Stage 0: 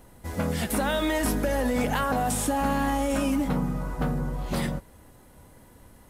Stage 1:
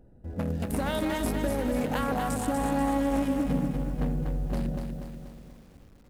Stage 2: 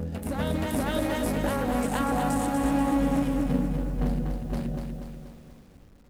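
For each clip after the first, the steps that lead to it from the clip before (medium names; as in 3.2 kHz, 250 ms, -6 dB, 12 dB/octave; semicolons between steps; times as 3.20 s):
local Wiener filter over 41 samples; bit-crushed delay 242 ms, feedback 55%, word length 9-bit, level -5 dB; trim -2 dB
flange 1 Hz, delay 3.5 ms, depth 9.6 ms, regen -76%; reverse echo 476 ms -3 dB; trim +4.5 dB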